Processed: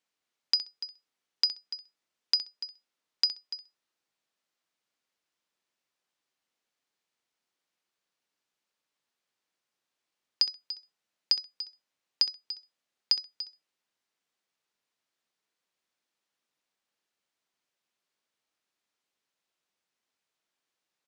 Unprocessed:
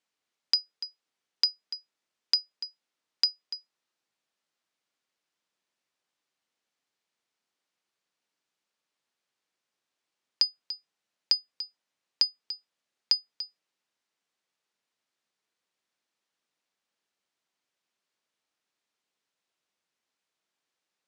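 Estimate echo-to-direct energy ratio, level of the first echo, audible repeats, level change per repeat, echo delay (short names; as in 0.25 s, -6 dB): -14.0 dB, -14.0 dB, 2, -15.0 dB, 65 ms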